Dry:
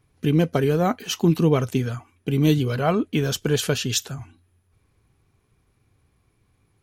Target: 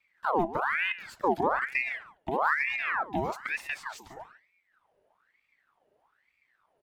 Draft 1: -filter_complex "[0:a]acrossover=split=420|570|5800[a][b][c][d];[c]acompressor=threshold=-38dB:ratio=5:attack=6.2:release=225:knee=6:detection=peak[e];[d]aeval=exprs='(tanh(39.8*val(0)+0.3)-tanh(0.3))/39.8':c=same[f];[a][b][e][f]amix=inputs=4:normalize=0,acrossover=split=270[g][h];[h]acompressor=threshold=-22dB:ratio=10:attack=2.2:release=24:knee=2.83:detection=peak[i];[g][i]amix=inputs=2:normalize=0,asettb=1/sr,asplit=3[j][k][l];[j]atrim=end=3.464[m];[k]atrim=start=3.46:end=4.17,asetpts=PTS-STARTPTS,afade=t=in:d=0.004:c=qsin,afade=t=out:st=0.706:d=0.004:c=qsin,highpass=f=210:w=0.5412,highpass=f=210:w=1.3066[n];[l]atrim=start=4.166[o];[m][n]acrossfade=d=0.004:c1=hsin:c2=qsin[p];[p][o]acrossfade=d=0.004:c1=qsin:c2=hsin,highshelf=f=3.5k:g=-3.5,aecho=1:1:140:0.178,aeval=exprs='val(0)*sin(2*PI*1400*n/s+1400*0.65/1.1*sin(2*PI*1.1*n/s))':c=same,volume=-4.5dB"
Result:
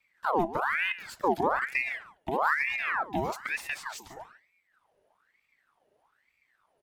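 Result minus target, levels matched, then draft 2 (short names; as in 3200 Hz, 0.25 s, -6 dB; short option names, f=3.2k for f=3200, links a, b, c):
8000 Hz band +5.5 dB
-filter_complex "[0:a]acrossover=split=420|570|5800[a][b][c][d];[c]acompressor=threshold=-38dB:ratio=5:attack=6.2:release=225:knee=6:detection=peak[e];[d]aeval=exprs='(tanh(39.8*val(0)+0.3)-tanh(0.3))/39.8':c=same[f];[a][b][e][f]amix=inputs=4:normalize=0,acrossover=split=270[g][h];[h]acompressor=threshold=-22dB:ratio=10:attack=2.2:release=24:knee=2.83:detection=peak[i];[g][i]amix=inputs=2:normalize=0,asettb=1/sr,asplit=3[j][k][l];[j]atrim=end=3.464[m];[k]atrim=start=3.46:end=4.17,asetpts=PTS-STARTPTS,afade=t=in:d=0.004:c=qsin,afade=t=out:st=0.706:d=0.004:c=qsin,highpass=f=210:w=0.5412,highpass=f=210:w=1.3066[n];[l]atrim=start=4.166[o];[m][n]acrossfade=d=0.004:c1=hsin:c2=qsin[p];[p][o]acrossfade=d=0.004:c1=qsin:c2=hsin,highshelf=f=3.5k:g=-10.5,aecho=1:1:140:0.178,aeval=exprs='val(0)*sin(2*PI*1400*n/s+1400*0.65/1.1*sin(2*PI*1.1*n/s))':c=same,volume=-4.5dB"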